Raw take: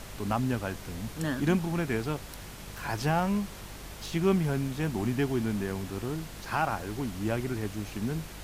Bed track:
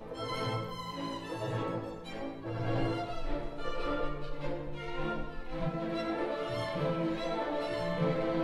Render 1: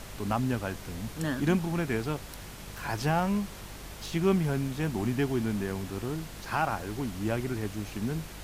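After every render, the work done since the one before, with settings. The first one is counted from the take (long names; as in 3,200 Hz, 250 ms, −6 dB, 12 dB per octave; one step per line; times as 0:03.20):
no processing that can be heard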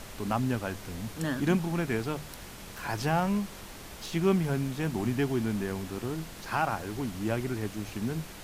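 hum removal 50 Hz, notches 3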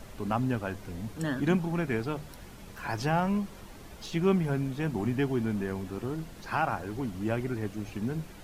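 broadband denoise 8 dB, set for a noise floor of −45 dBFS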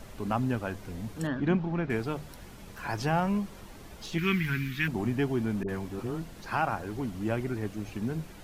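0:01.27–0:01.90: high-frequency loss of the air 210 metres
0:04.18–0:04.88: drawn EQ curve 120 Hz 0 dB, 370 Hz −5 dB, 530 Hz −29 dB, 1,200 Hz +1 dB, 2,000 Hz +15 dB, 9,300 Hz −2 dB, 14,000 Hz +11 dB
0:05.63–0:06.22: all-pass dispersion highs, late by 55 ms, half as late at 660 Hz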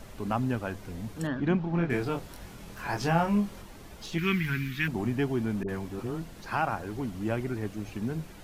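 0:01.71–0:03.62: double-tracking delay 24 ms −3 dB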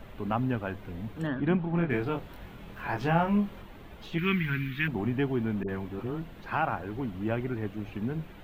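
flat-topped bell 7,500 Hz −14.5 dB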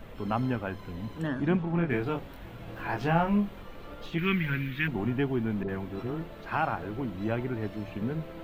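mix in bed track −13 dB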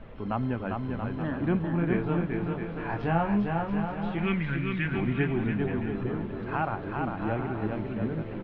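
high-frequency loss of the air 290 metres
bouncing-ball delay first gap 400 ms, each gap 0.7×, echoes 5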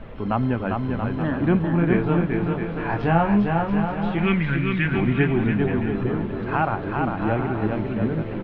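level +7 dB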